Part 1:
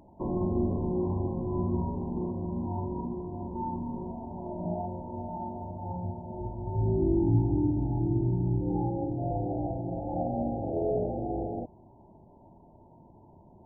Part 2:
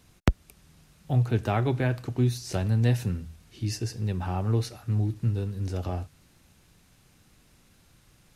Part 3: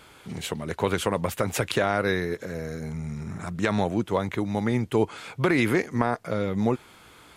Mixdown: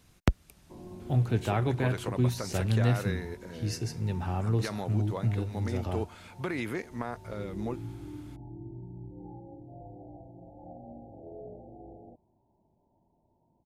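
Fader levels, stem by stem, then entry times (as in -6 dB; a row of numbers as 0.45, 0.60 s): -16.0, -2.5, -11.5 dB; 0.50, 0.00, 1.00 s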